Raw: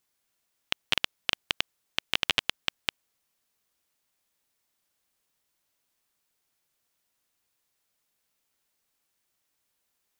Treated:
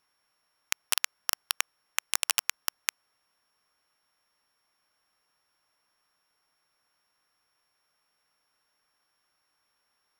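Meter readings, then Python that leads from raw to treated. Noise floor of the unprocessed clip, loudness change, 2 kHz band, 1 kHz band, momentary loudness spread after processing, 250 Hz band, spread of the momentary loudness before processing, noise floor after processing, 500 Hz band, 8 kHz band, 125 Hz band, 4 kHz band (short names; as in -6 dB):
-78 dBFS, -0.5 dB, -2.5 dB, 0.0 dB, 8 LU, -14.5 dB, 8 LU, -76 dBFS, -8.0 dB, +13.0 dB, under -15 dB, -5.0 dB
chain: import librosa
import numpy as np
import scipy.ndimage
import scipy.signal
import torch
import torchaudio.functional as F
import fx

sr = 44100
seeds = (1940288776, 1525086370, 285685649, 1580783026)

y = np.r_[np.sort(x[:len(x) // 8 * 8].reshape(-1, 8), axis=1).ravel(), x[len(x) // 8 * 8:]]
y = (np.mod(10.0 ** (8.0 / 20.0) * y + 1.0, 2.0) - 1.0) / 10.0 ** (8.0 / 20.0)
y = fx.peak_eq(y, sr, hz=1200.0, db=11.0, octaves=1.9)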